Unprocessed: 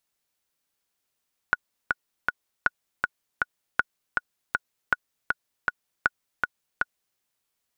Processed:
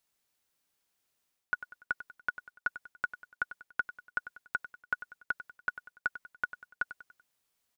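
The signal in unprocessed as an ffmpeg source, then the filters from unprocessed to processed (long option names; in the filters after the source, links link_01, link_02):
-f lavfi -i "aevalsrc='pow(10,(-6.5-3*gte(mod(t,3*60/159),60/159))/20)*sin(2*PI*1460*mod(t,60/159))*exp(-6.91*mod(t,60/159)/0.03)':duration=5.66:sample_rate=44100"
-af "areverse,acompressor=threshold=-29dB:ratio=6,areverse,aecho=1:1:96|192|288|384:0.211|0.0951|0.0428|0.0193"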